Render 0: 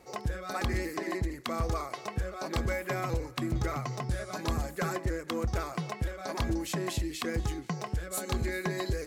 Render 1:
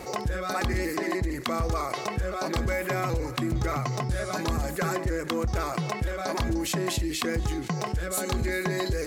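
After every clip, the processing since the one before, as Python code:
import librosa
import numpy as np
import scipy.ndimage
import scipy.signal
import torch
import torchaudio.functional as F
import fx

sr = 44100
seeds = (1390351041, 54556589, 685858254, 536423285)

y = fx.env_flatten(x, sr, amount_pct=50)
y = y * 10.0 ** (2.0 / 20.0)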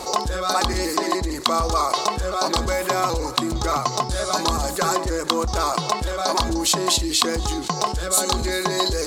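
y = fx.graphic_eq(x, sr, hz=(125, 1000, 2000, 4000, 8000), db=(-9, 9, -8, 10, 7))
y = y * 10.0 ** (4.5 / 20.0)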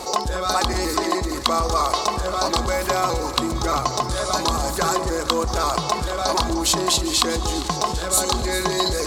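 y = fx.echo_alternate(x, sr, ms=200, hz=1100.0, feedback_pct=80, wet_db=-11.5)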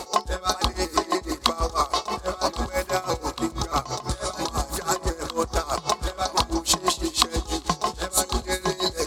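y = x * 10.0 ** (-19 * (0.5 - 0.5 * np.cos(2.0 * np.pi * 6.1 * np.arange(len(x)) / sr)) / 20.0)
y = y * 10.0 ** (1.0 / 20.0)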